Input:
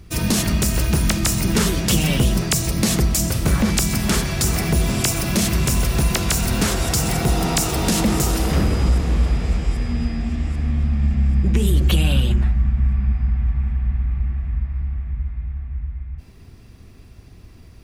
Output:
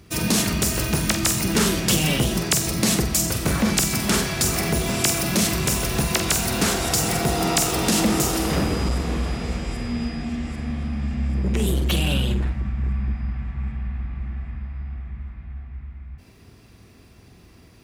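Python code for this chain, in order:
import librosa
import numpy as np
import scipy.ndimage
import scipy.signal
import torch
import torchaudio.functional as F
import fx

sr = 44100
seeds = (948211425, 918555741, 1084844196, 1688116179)

y = fx.room_flutter(x, sr, wall_m=7.9, rt60_s=0.31)
y = np.clip(10.0 ** (9.5 / 20.0) * y, -1.0, 1.0) / 10.0 ** (9.5 / 20.0)
y = fx.highpass(y, sr, hz=170.0, slope=6)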